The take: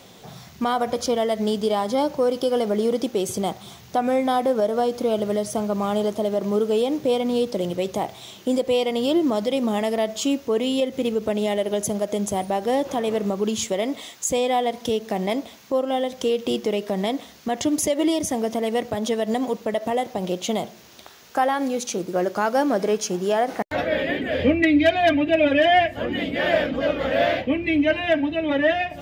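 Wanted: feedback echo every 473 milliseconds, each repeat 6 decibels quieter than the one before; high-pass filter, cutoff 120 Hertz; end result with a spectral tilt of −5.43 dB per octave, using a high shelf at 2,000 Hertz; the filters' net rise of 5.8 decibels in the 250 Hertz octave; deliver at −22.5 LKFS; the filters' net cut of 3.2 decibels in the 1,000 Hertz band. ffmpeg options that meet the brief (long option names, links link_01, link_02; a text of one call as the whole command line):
ffmpeg -i in.wav -af "highpass=120,equalizer=frequency=250:width_type=o:gain=7.5,equalizer=frequency=1000:width_type=o:gain=-5,highshelf=frequency=2000:gain=-5.5,aecho=1:1:473|946|1419|1892|2365|2838:0.501|0.251|0.125|0.0626|0.0313|0.0157,volume=-3dB" out.wav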